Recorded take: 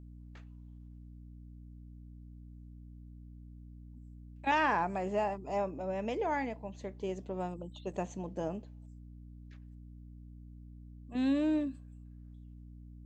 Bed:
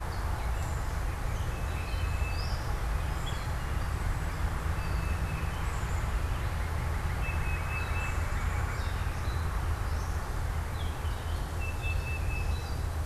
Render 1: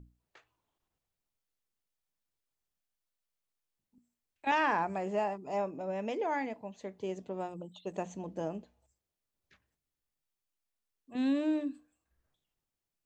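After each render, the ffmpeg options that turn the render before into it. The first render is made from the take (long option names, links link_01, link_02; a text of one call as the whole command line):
ffmpeg -i in.wav -af "bandreject=frequency=60:width_type=h:width=6,bandreject=frequency=120:width_type=h:width=6,bandreject=frequency=180:width_type=h:width=6,bandreject=frequency=240:width_type=h:width=6,bandreject=frequency=300:width_type=h:width=6" out.wav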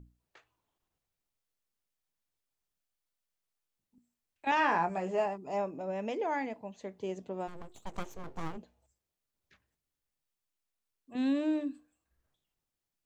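ffmpeg -i in.wav -filter_complex "[0:a]asettb=1/sr,asplit=3[link_01][link_02][link_03];[link_01]atrim=end=4.554[link_04];[link_02]atrim=start=4.55:end=5.26,asetpts=PTS-STARTPTS,afade=type=in:duration=0.004:curve=qsin,afade=type=out:start_time=0.706:duration=0.004:curve=qsin,asplit=2[link_05][link_06];[link_06]adelay=17,volume=-5.5dB[link_07];[link_05][link_07]amix=inputs=2:normalize=0,atrim=end_sample=31311[link_08];[link_03]atrim=start=5.256[link_09];[link_04][link_08]acrossfade=duration=0.004:curve1=hsin:curve2=qsin[link_10];[link_10][link_09]acrossfade=duration=0.004:curve1=qsin:curve2=hsin,asplit=3[link_11][link_12][link_13];[link_11]afade=type=out:start_time=7.47:duration=0.02[link_14];[link_12]aeval=exprs='abs(val(0))':channel_layout=same,afade=type=in:start_time=7.47:duration=0.02,afade=type=out:start_time=8.56:duration=0.02[link_15];[link_13]afade=type=in:start_time=8.56:duration=0.02[link_16];[link_14][link_15][link_16]amix=inputs=3:normalize=0" out.wav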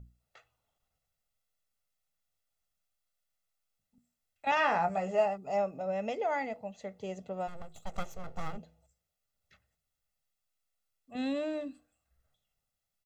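ffmpeg -i in.wav -af "aecho=1:1:1.5:0.66,bandreject=frequency=164:width_type=h:width=4,bandreject=frequency=328:width_type=h:width=4,bandreject=frequency=492:width_type=h:width=4" out.wav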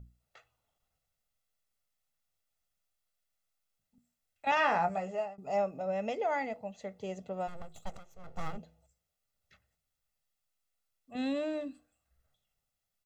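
ffmpeg -i in.wav -filter_complex "[0:a]asplit=3[link_01][link_02][link_03];[link_01]atrim=end=5.38,asetpts=PTS-STARTPTS,afade=type=out:start_time=4.84:duration=0.54:silence=0.133352[link_04];[link_02]atrim=start=5.38:end=7.98,asetpts=PTS-STARTPTS,afade=type=in:duration=0.004:curve=hsin:silence=0.133352,afade=type=out:start_time=2.596:duration=0.004:curve=hsin:silence=0.133352[link_05];[link_03]atrim=start=7.98,asetpts=PTS-STARTPTS,afade=type=in:duration=0.43:curve=qua:silence=0.133352[link_06];[link_04][link_05][link_06]concat=n=3:v=0:a=1" out.wav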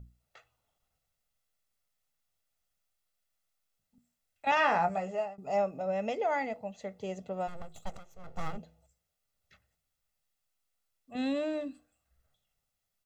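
ffmpeg -i in.wav -af "volume=1.5dB" out.wav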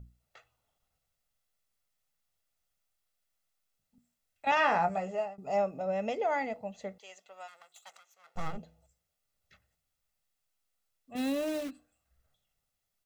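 ffmpeg -i in.wav -filter_complex "[0:a]asettb=1/sr,asplit=3[link_01][link_02][link_03];[link_01]atrim=end=6.984[link_04];[link_02]atrim=start=6.98:end=8.36,asetpts=PTS-STARTPTS,afade=type=in:duration=0.004:curve=qsin,afade=type=out:start_time=1.376:duration=0.004:curve=qsin,highpass=1400[link_05];[link_03]atrim=start=8.356[link_06];[link_04][link_05]acrossfade=duration=0.004:curve1=hsin:curve2=qsin[link_07];[link_07][link_06]acrossfade=duration=0.004:curve1=qsin:curve2=hsin,asplit=3[link_08][link_09][link_10];[link_08]afade=type=out:start_time=11.15:duration=0.02[link_11];[link_09]acrusher=bits=8:dc=4:mix=0:aa=0.000001,afade=type=in:start_time=11.15:duration=0.02,afade=type=out:start_time=11.69:duration=0.02[link_12];[link_10]afade=type=in:start_time=11.69:duration=0.02[link_13];[link_11][link_12][link_13]amix=inputs=3:normalize=0" out.wav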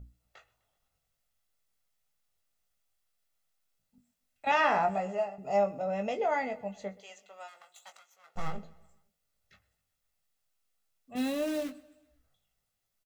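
ffmpeg -i in.wav -filter_complex "[0:a]asplit=2[link_01][link_02];[link_02]adelay=20,volume=-7dB[link_03];[link_01][link_03]amix=inputs=2:normalize=0,aecho=1:1:127|254|381|508:0.0708|0.0375|0.0199|0.0105" out.wav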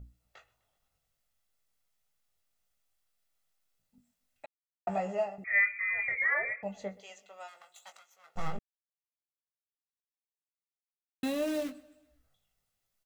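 ffmpeg -i in.wav -filter_complex "[0:a]asettb=1/sr,asplit=3[link_01][link_02][link_03];[link_01]atrim=end=5.444[link_04];[link_02]atrim=start=5.44:end=6.63,asetpts=PTS-STARTPTS,afade=type=in:duration=0.004:curve=qsin,afade=type=out:start_time=1.186:duration=0.004:curve=qsin,lowpass=frequency=2200:width_type=q:width=0.5098,lowpass=frequency=2200:width_type=q:width=0.6013,lowpass=frequency=2200:width_type=q:width=0.9,lowpass=frequency=2200:width_type=q:width=2.563,afreqshift=-2600[link_05];[link_03]atrim=start=6.626[link_06];[link_04][link_05]acrossfade=duration=0.004:curve1=hsin:curve2=qsin[link_07];[link_07][link_06]acrossfade=duration=0.004:curve1=qsin:curve2=hsin,asplit=5[link_08][link_09][link_10][link_11][link_12];[link_08]atrim=end=4.46,asetpts=PTS-STARTPTS,afade=type=out:start_time=4.456:duration=0.004:curve=hsin[link_13];[link_09]atrim=start=4.46:end=4.87,asetpts=PTS-STARTPTS,volume=0[link_14];[link_10]atrim=start=4.87:end=8.59,asetpts=PTS-STARTPTS,afade=type=in:duration=0.004:curve=hsin,afade=type=out:start_time=3.716:duration=0.004:curve=hsin[link_15];[link_11]atrim=start=8.59:end=11.23,asetpts=PTS-STARTPTS,volume=0[link_16];[link_12]atrim=start=11.23,asetpts=PTS-STARTPTS,afade=type=in:duration=0.004:curve=hsin[link_17];[link_13][link_14][link_15][link_16][link_17]concat=n=5:v=0:a=1" out.wav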